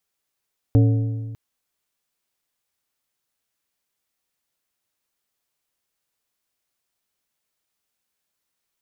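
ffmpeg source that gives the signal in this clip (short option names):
-f lavfi -i "aevalsrc='0.299*pow(10,-3*t/1.7)*sin(2*PI*112*t)+0.133*pow(10,-3*t/1.291)*sin(2*PI*280*t)+0.0596*pow(10,-3*t/1.122)*sin(2*PI*448*t)+0.0266*pow(10,-3*t/1.049)*sin(2*PI*560*t)+0.0119*pow(10,-3*t/0.97)*sin(2*PI*728*t)':d=0.6:s=44100"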